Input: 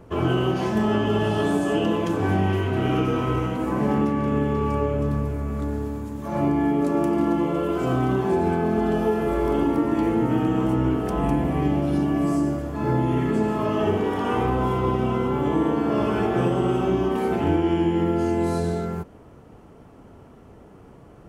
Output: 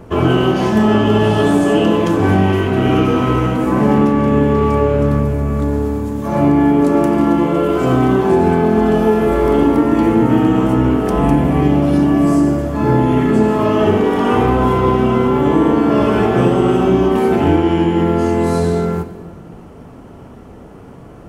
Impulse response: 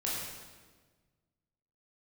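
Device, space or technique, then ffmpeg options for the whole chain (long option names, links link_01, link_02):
saturated reverb return: -filter_complex "[0:a]asplit=2[link_01][link_02];[1:a]atrim=start_sample=2205[link_03];[link_02][link_03]afir=irnorm=-1:irlink=0,asoftclip=type=tanh:threshold=-19dB,volume=-11dB[link_04];[link_01][link_04]amix=inputs=2:normalize=0,equalizer=frequency=240:width_type=o:width=0.24:gain=3,volume=7.5dB"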